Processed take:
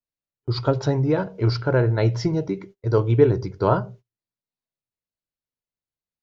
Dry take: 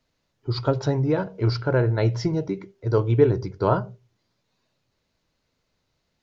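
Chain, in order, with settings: gate -44 dBFS, range -27 dB; trim +1.5 dB

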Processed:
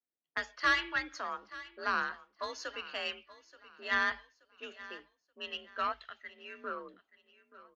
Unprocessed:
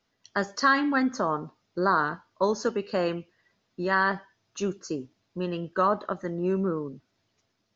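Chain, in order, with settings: level-controlled noise filter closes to 330 Hz, open at -23.5 dBFS; 5.92–6.64 s: ten-band graphic EQ 125 Hz -5 dB, 250 Hz -10 dB, 500 Hz -8 dB, 1 kHz -11 dB, 2 kHz +4 dB; band-pass sweep 2.8 kHz -> 1.2 kHz, 6.22–7.08 s; Chebyshev shaper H 4 -16 dB, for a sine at -15 dBFS; frequency shift +48 Hz; on a send: feedback delay 878 ms, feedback 33%, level -18 dB; on the sum: trim +5 dB

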